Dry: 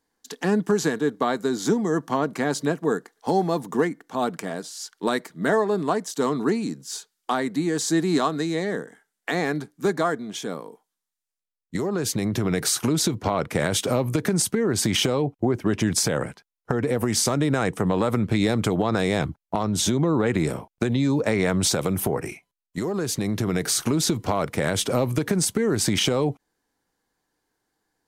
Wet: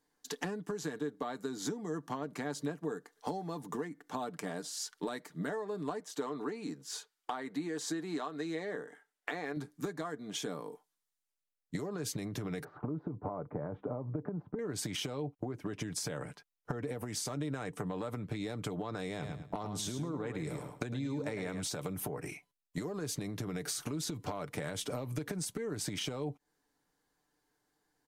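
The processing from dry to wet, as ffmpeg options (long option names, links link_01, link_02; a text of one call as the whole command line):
ffmpeg -i in.wav -filter_complex "[0:a]asettb=1/sr,asplit=3[link_01][link_02][link_03];[link_01]atrim=end=6.004[link_04];[link_02]atrim=start=6:end=9.57,asetpts=PTS-STARTPTS,afade=type=in:duration=0.004:curve=qsin,afade=type=out:start_time=3.566:duration=0.004:curve=qsin,bass=frequency=250:gain=-10,treble=frequency=4000:gain=-7[link_05];[link_03]atrim=start=9.566[link_06];[link_04][link_05]acrossfade=duration=0.004:curve1=hsin:curve2=qsin[link_07];[link_07][link_06]acrossfade=duration=0.004:curve1=qsin:curve2=hsin,asettb=1/sr,asplit=3[link_08][link_09][link_10];[link_08]atrim=end=12.644[link_11];[link_09]atrim=start=12.64:end=14.59,asetpts=PTS-STARTPTS,afade=type=in:duration=0.004:curve=qsin,afade=type=out:start_time=1.946:duration=0.004:curve=qsin,lowpass=frequency=1100:width=0.5412,lowpass=frequency=1100:width=1.3066[link_12];[link_10]atrim=start=14.586[link_13];[link_11][link_12]acrossfade=duration=0.004:curve1=hsin:curve2=qsin[link_14];[link_14][link_13]acrossfade=duration=0.004:curve1=qsin:curve2=hsin,asplit=3[link_15][link_16][link_17];[link_15]afade=type=out:start_time=19.21:duration=0.02[link_18];[link_16]aecho=1:1:106|212|318:0.422|0.0717|0.0122,afade=type=in:start_time=19.21:duration=0.02,afade=type=out:start_time=21.61:duration=0.02[link_19];[link_17]afade=type=in:start_time=21.61:duration=0.02[link_20];[link_18][link_19][link_20]amix=inputs=3:normalize=0,acompressor=threshold=-31dB:ratio=16,aecho=1:1:6.8:0.38,volume=-3.5dB" out.wav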